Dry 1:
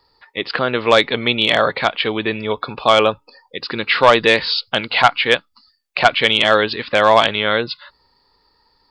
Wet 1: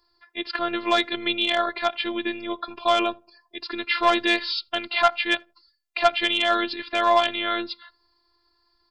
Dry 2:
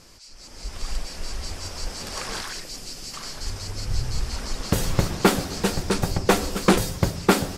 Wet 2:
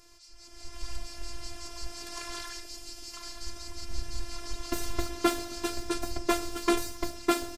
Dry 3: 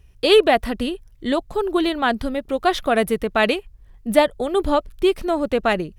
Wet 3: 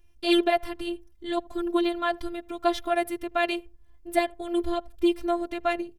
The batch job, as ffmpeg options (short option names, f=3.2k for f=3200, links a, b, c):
-filter_complex "[0:a]asplit=2[a][b];[b]adelay=80,lowpass=f=860:p=1,volume=-23dB,asplit=2[c][d];[d]adelay=80,lowpass=f=860:p=1,volume=0.26[e];[a][c][e]amix=inputs=3:normalize=0,afftfilt=real='hypot(re,im)*cos(PI*b)':imag='0':win_size=512:overlap=0.75,volume=-4dB"